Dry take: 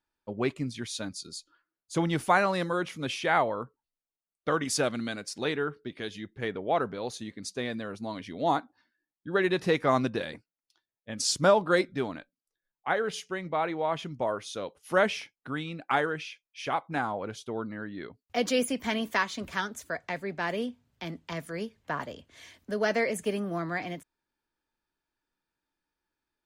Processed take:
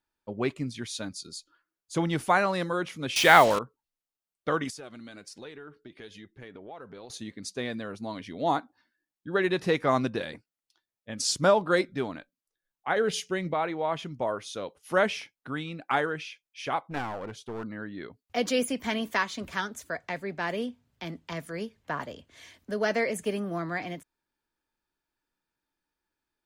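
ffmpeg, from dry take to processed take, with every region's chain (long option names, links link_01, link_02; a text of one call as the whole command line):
ffmpeg -i in.wav -filter_complex "[0:a]asettb=1/sr,asplit=3[link_01][link_02][link_03];[link_01]atrim=end=3.164[link_04];[link_02]atrim=start=3.16:end=3.59,asetpts=PTS-STARTPTS,afade=type=in:duration=0.004:curve=qsin,afade=type=out:start_time=0.426:duration=0.004:curve=qsin,acontrast=69,highshelf=frequency=2200:gain=9.5,acrusher=bits=4:mix=0:aa=0.5[link_05];[link_03]atrim=start=3.586[link_06];[link_04][link_05]acrossfade=duration=0.004:curve1=hsin:curve2=qsin[link_07];[link_07][link_06]acrossfade=duration=0.004:curve1=qsin:curve2=hsin,asettb=1/sr,asplit=3[link_08][link_09][link_10];[link_08]atrim=end=4.704[link_11];[link_09]atrim=start=4.7:end=7.1,asetpts=PTS-STARTPTS,afade=type=in:duration=0.004:curve=qsin,afade=type=out:start_time=2.396:duration=0.004:curve=qsin,acompressor=threshold=-36dB:ratio=6:attack=3.2:release=140:knee=1:detection=peak,flanger=delay=1.8:depth=1.9:regen=69:speed=1.4:shape=triangular[link_12];[link_10]atrim=start=7.096[link_13];[link_11][link_12]acrossfade=duration=0.004:curve1=hsin:curve2=qsin[link_14];[link_14][link_13]acrossfade=duration=0.004:curve1=qsin:curve2=hsin,asettb=1/sr,asplit=3[link_15][link_16][link_17];[link_15]atrim=end=12.964[link_18];[link_16]atrim=start=12.96:end=13.54,asetpts=PTS-STARTPTS,afade=type=in:duration=0.004:curve=qsin,afade=type=out:start_time=0.576:duration=0.004:curve=qsin,equalizer=frequency=1100:width_type=o:width=1.4:gain=-7.5,acontrast=56[link_19];[link_17]atrim=start=13.536[link_20];[link_18][link_19]acrossfade=duration=0.004:curve1=hsin:curve2=qsin[link_21];[link_21][link_20]acrossfade=duration=0.004:curve1=qsin:curve2=hsin,asettb=1/sr,asplit=3[link_22][link_23][link_24];[link_22]atrim=end=16.814[link_25];[link_23]atrim=start=16.81:end=17.64,asetpts=PTS-STARTPTS,afade=type=in:duration=0.004:curve=qsin,afade=type=out:start_time=0.826:duration=0.004:curve=qsin,highshelf=frequency=2800:gain=-3.5,aeval=exprs='clip(val(0),-1,0.0168)':channel_layout=same[link_26];[link_24]atrim=start=17.636[link_27];[link_25][link_26]acrossfade=duration=0.004:curve1=hsin:curve2=qsin[link_28];[link_28][link_27]acrossfade=duration=0.004:curve1=qsin:curve2=hsin" out.wav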